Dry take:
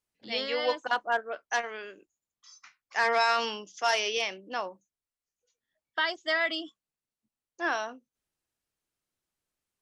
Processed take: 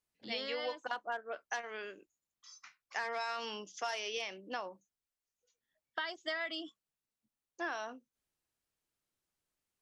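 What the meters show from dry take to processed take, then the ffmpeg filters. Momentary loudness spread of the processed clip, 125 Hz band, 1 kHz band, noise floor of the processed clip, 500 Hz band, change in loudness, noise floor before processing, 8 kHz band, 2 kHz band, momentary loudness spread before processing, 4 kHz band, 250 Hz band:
14 LU, can't be measured, −11.0 dB, below −85 dBFS, −9.5 dB, −10.5 dB, below −85 dBFS, −9.0 dB, −10.5 dB, 12 LU, −9.0 dB, −6.5 dB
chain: -af "acompressor=threshold=-33dB:ratio=6,volume=-2dB"

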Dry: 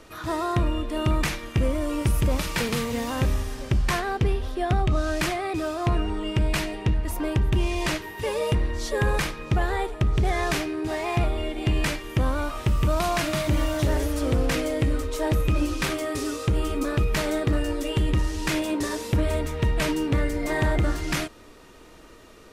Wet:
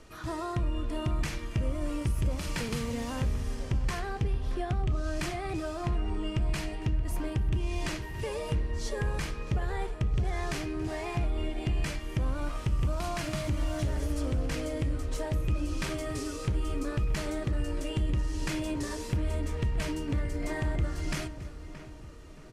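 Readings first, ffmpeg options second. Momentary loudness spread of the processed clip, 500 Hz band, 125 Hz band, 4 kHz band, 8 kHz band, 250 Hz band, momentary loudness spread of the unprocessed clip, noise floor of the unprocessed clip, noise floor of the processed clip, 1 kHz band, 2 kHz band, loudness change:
4 LU, −9.0 dB, −5.5 dB, −9.0 dB, −7.5 dB, −7.5 dB, 4 LU, −48 dBFS, −43 dBFS, −9.5 dB, −9.5 dB, −7.0 dB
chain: -filter_complex "[0:a]asplit=2[link_01][link_02];[link_02]aecho=0:1:278:0.0668[link_03];[link_01][link_03]amix=inputs=2:normalize=0,acompressor=threshold=-24dB:ratio=6,lowpass=10000,lowshelf=frequency=180:gain=8,asplit=2[link_04][link_05];[link_05]adelay=625,lowpass=frequency=1900:poles=1,volume=-12dB,asplit=2[link_06][link_07];[link_07]adelay=625,lowpass=frequency=1900:poles=1,volume=0.46,asplit=2[link_08][link_09];[link_09]adelay=625,lowpass=frequency=1900:poles=1,volume=0.46,asplit=2[link_10][link_11];[link_11]adelay=625,lowpass=frequency=1900:poles=1,volume=0.46,asplit=2[link_12][link_13];[link_13]adelay=625,lowpass=frequency=1900:poles=1,volume=0.46[link_14];[link_06][link_08][link_10][link_12][link_14]amix=inputs=5:normalize=0[link_15];[link_04][link_15]amix=inputs=2:normalize=0,flanger=delay=4.7:depth=8.1:regen=-84:speed=0.17:shape=triangular,highshelf=frequency=4800:gain=5,bandreject=frequency=3700:width=19,volume=-3dB"

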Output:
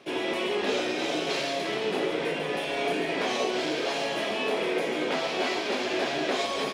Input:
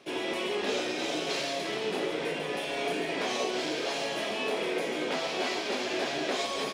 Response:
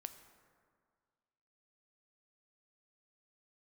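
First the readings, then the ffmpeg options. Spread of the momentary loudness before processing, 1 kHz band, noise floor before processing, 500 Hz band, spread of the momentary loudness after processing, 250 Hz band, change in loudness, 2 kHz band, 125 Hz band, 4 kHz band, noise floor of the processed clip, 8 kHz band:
2 LU, +3.5 dB, −34 dBFS, +3.5 dB, 2 LU, +3.5 dB, +3.0 dB, +3.0 dB, +3.5 dB, +2.0 dB, −31 dBFS, −0.5 dB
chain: -filter_complex "[0:a]asplit=2[link_01][link_02];[1:a]atrim=start_sample=2205,lowpass=4800[link_03];[link_02][link_03]afir=irnorm=-1:irlink=0,volume=-2dB[link_04];[link_01][link_04]amix=inputs=2:normalize=0"

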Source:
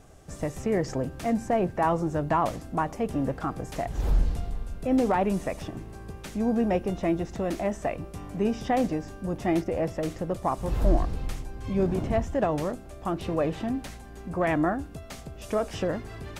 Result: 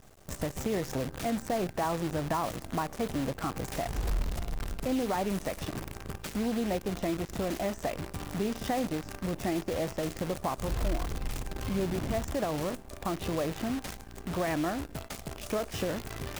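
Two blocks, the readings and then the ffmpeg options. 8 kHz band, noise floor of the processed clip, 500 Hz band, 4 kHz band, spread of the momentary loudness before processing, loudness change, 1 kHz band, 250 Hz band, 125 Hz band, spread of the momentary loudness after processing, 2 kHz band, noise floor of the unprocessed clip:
+4.0 dB, −47 dBFS, −5.0 dB, +3.5 dB, 12 LU, −5.0 dB, −5.5 dB, −5.0 dB, −4.5 dB, 7 LU, −2.0 dB, −44 dBFS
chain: -af "acompressor=threshold=-30dB:ratio=2.5,acrusher=bits=7:dc=4:mix=0:aa=0.000001"

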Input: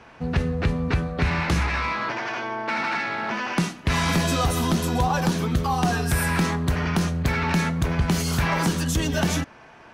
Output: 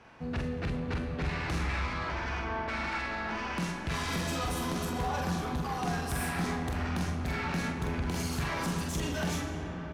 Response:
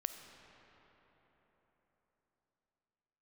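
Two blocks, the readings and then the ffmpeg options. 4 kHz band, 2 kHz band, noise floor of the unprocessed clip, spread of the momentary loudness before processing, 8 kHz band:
−9.0 dB, −8.5 dB, −48 dBFS, 5 LU, −9.5 dB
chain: -filter_complex "[1:a]atrim=start_sample=2205,asetrate=26901,aresample=44100[link_01];[0:a][link_01]afir=irnorm=-1:irlink=0,asoftclip=type=tanh:threshold=-19.5dB,asplit=2[link_02][link_03];[link_03]adelay=45,volume=-4dB[link_04];[link_02][link_04]amix=inputs=2:normalize=0,volume=-9dB"

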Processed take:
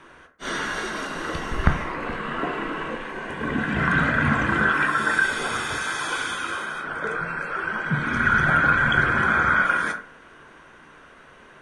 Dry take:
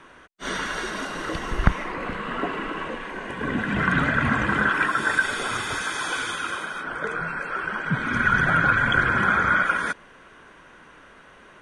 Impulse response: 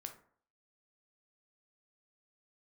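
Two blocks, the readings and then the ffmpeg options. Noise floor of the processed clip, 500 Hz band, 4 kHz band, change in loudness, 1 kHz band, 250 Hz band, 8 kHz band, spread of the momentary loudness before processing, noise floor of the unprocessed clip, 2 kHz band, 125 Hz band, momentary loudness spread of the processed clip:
−49 dBFS, +1.0 dB, 0.0 dB, +1.0 dB, +1.0 dB, +0.5 dB, 0.0 dB, 11 LU, −50 dBFS, +1.0 dB, +1.0 dB, 11 LU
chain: -filter_complex "[1:a]atrim=start_sample=2205,asetrate=48510,aresample=44100[link_01];[0:a][link_01]afir=irnorm=-1:irlink=0,volume=5.5dB"

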